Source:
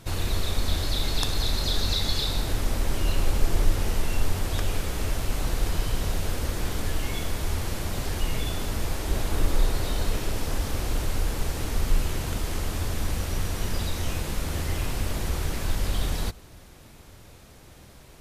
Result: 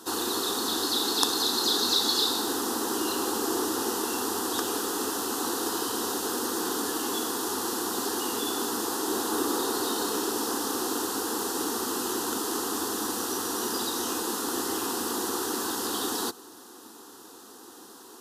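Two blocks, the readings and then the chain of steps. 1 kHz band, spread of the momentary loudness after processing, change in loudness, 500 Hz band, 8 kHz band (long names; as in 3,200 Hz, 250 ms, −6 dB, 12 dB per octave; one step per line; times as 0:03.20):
+6.5 dB, 6 LU, +2.0 dB, +4.5 dB, +7.0 dB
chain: high-pass filter 210 Hz 24 dB per octave
phaser with its sweep stopped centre 600 Hz, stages 6
level +8 dB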